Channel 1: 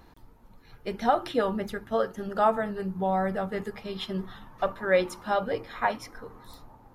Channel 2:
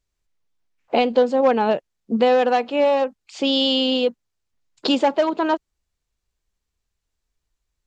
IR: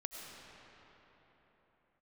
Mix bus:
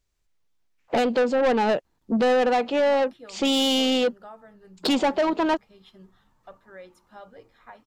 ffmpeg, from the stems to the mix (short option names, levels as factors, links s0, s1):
-filter_complex "[0:a]alimiter=limit=0.168:level=0:latency=1:release=346,adelay=1850,volume=0.126[s0];[1:a]asoftclip=type=tanh:threshold=0.112,volume=1.26[s1];[s0][s1]amix=inputs=2:normalize=0"